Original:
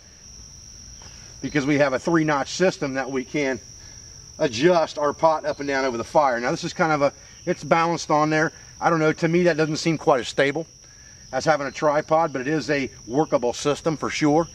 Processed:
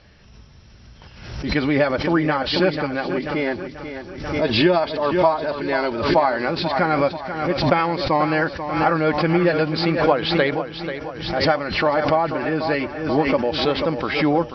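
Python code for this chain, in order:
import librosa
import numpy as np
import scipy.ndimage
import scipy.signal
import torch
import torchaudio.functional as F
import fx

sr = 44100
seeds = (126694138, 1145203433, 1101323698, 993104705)

y = scipy.signal.sosfilt(scipy.signal.butter(16, 4900.0, 'lowpass', fs=sr, output='sos'), x)
y = fx.echo_feedback(y, sr, ms=488, feedback_pct=52, wet_db=-10.0)
y = fx.pre_swell(y, sr, db_per_s=62.0)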